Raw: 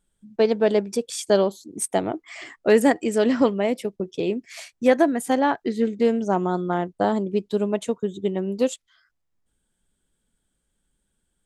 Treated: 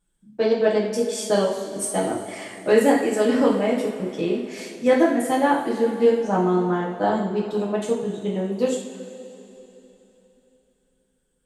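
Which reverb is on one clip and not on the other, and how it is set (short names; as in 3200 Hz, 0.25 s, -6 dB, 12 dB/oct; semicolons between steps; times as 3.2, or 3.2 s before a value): two-slope reverb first 0.52 s, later 3.5 s, from -15 dB, DRR -5 dB; gain -5 dB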